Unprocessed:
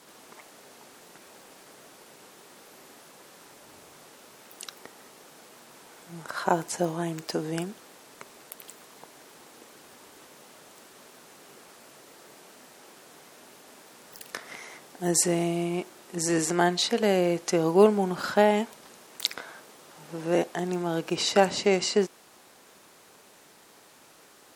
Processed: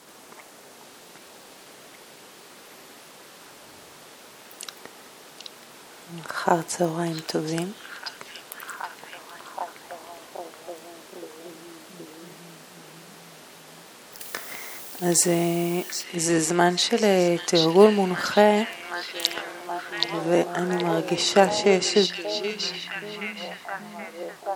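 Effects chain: repeats whose band climbs or falls 775 ms, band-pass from 3.7 kHz, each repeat -0.7 oct, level -0.5 dB; 14.19–16.02 s: added noise blue -44 dBFS; trim +3.5 dB

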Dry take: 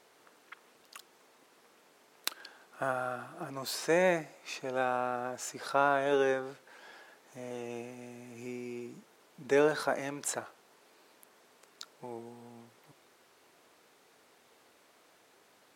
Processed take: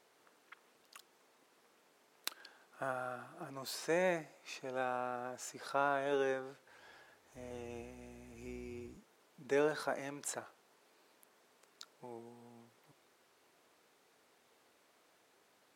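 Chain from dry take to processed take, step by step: 6.66–8.97 s: octave divider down 2 oct, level -5 dB; trim -6.5 dB

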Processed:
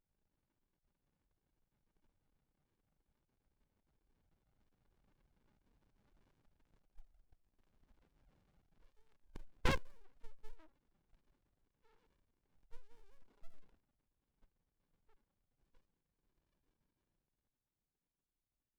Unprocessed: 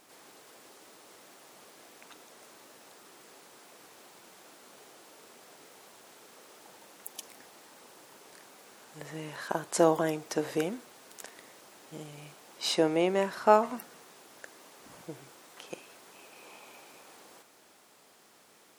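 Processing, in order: formants replaced by sine waves; Doppler pass-by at 7.20 s, 10 m/s, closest 2.8 m; Chebyshev shaper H 2 -13 dB, 8 -8 dB, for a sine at -32.5 dBFS; sliding maximum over 65 samples; trim +12 dB

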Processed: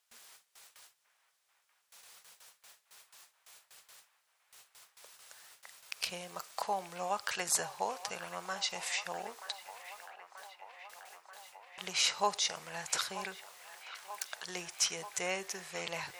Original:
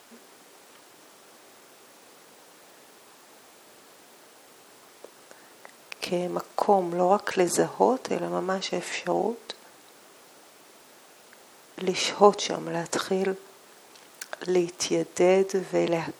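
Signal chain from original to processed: gate with hold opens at -41 dBFS; amplifier tone stack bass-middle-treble 10-0-10; feedback echo behind a band-pass 934 ms, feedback 74%, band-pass 1.3 kHz, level -11.5 dB

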